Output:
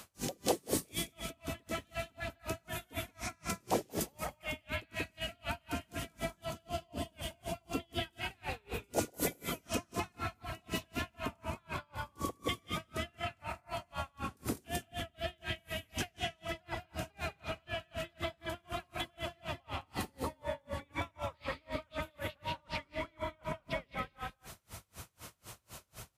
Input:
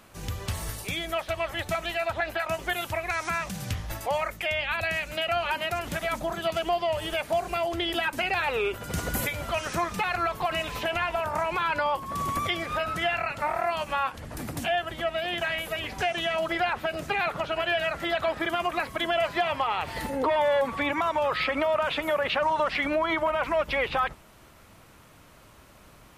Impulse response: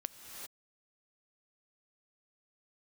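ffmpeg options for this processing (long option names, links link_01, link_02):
-filter_complex "[0:a]highshelf=frequency=7100:gain=-7.5[link_01];[1:a]atrim=start_sample=2205,asetrate=79380,aresample=44100[link_02];[link_01][link_02]afir=irnorm=-1:irlink=0,acrossover=split=120[link_03][link_04];[link_03]aeval=exprs='0.0266*sin(PI/2*8.91*val(0)/0.0266)':channel_layout=same[link_05];[link_04]acompressor=threshold=-48dB:ratio=4[link_06];[link_05][link_06]amix=inputs=2:normalize=0,highpass=73,bass=frequency=250:gain=-14,treble=frequency=4000:gain=14,aecho=1:1:180:0.501,aeval=exprs='val(0)*pow(10,-36*(0.5-0.5*cos(2*PI*4*n/s))/20)':channel_layout=same,volume=10.5dB"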